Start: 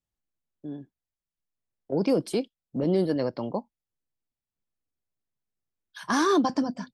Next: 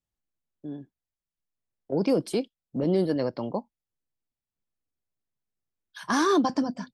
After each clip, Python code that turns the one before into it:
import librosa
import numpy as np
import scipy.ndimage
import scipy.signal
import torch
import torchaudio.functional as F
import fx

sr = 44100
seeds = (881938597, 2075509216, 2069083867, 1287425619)

y = x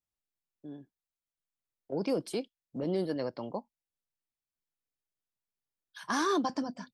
y = fx.low_shelf(x, sr, hz=410.0, db=-5.0)
y = F.gain(torch.from_numpy(y), -4.5).numpy()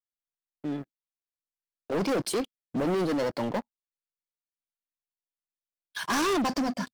y = fx.leveller(x, sr, passes=5)
y = F.gain(torch.from_numpy(y), -5.0).numpy()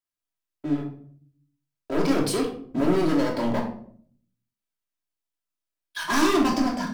y = fx.room_shoebox(x, sr, seeds[0], volume_m3=700.0, walls='furnished', distance_m=2.9)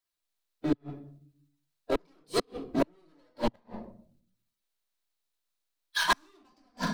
y = fx.spec_quant(x, sr, step_db=15)
y = fx.gate_flip(y, sr, shuts_db=-16.0, range_db=-42)
y = fx.graphic_eq_31(y, sr, hz=(125, 250, 4000), db=(-10, -8, 6))
y = F.gain(torch.from_numpy(y), 3.5).numpy()